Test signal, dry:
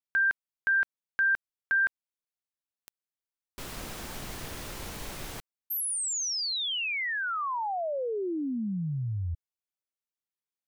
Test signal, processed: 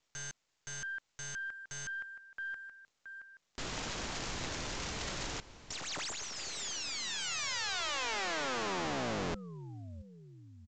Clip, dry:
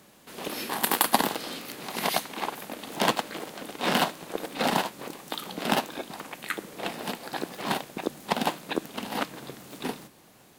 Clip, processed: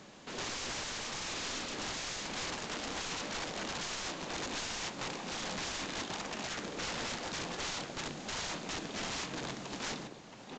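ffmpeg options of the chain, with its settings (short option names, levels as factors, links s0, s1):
-af "acontrast=37,aecho=1:1:673|1346|2019:0.126|0.0491|0.0191,aeval=exprs='(tanh(7.94*val(0)+0.6)-tanh(0.6))/7.94':c=same,aeval=exprs='(mod(35.5*val(0)+1,2)-1)/35.5':c=same" -ar 16000 -c:a pcm_mulaw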